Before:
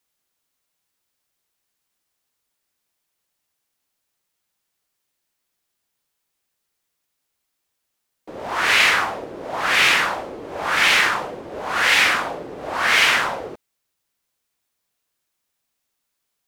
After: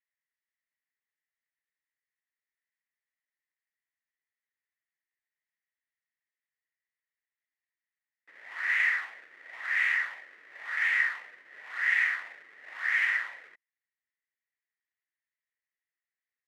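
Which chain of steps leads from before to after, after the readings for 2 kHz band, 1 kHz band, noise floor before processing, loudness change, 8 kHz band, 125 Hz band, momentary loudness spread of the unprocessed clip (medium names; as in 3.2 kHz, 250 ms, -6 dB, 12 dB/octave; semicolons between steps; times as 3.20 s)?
-8.5 dB, -22.0 dB, -77 dBFS, -10.0 dB, under -25 dB, under -40 dB, 18 LU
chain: square wave that keeps the level; band-pass filter 1.9 kHz, Q 11; trim -5 dB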